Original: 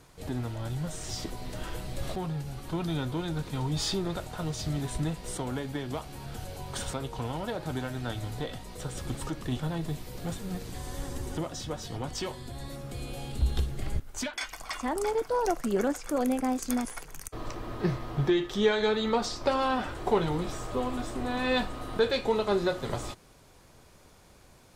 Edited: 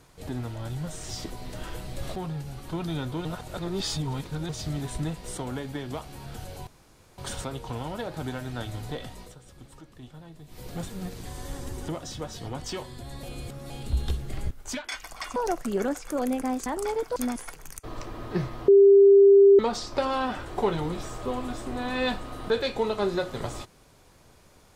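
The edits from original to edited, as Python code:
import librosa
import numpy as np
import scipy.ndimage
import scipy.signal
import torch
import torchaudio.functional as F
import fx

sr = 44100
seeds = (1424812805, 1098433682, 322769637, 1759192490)

y = fx.edit(x, sr, fx.reverse_span(start_s=3.25, length_s=1.24),
    fx.insert_room_tone(at_s=6.67, length_s=0.51),
    fx.fade_down_up(start_s=8.7, length_s=1.4, db=-14.0, fade_s=0.14),
    fx.reverse_span(start_s=12.72, length_s=0.47),
    fx.move(start_s=14.85, length_s=0.5, to_s=16.65),
    fx.bleep(start_s=18.17, length_s=0.91, hz=397.0, db=-11.0), tone=tone)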